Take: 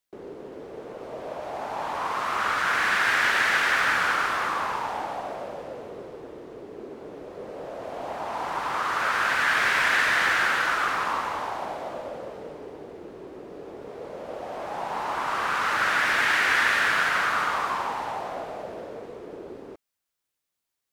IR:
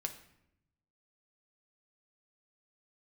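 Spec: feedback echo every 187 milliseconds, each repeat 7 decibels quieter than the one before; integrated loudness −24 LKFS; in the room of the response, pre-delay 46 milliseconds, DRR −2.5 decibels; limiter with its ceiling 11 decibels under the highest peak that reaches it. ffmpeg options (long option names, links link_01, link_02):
-filter_complex "[0:a]alimiter=limit=-20.5dB:level=0:latency=1,aecho=1:1:187|374|561|748|935:0.447|0.201|0.0905|0.0407|0.0183,asplit=2[link_01][link_02];[1:a]atrim=start_sample=2205,adelay=46[link_03];[link_02][link_03]afir=irnorm=-1:irlink=0,volume=3dB[link_04];[link_01][link_04]amix=inputs=2:normalize=0,volume=0.5dB"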